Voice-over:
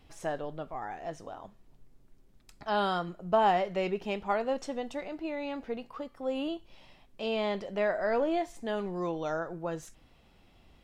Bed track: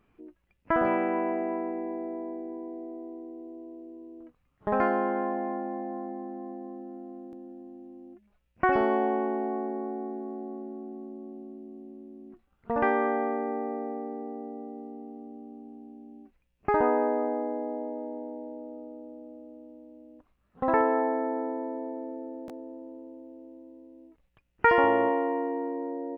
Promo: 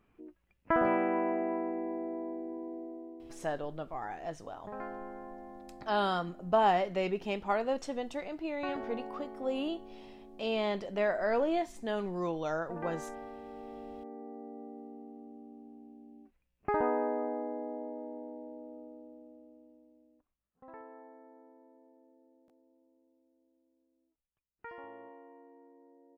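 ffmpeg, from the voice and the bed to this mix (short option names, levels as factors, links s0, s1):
-filter_complex "[0:a]adelay=3200,volume=0.891[s0];[1:a]volume=2.51,afade=t=out:st=2.74:d=0.88:silence=0.199526,afade=t=in:st=13.43:d=1.23:silence=0.298538,afade=t=out:st=18.8:d=1.8:silence=0.0944061[s1];[s0][s1]amix=inputs=2:normalize=0"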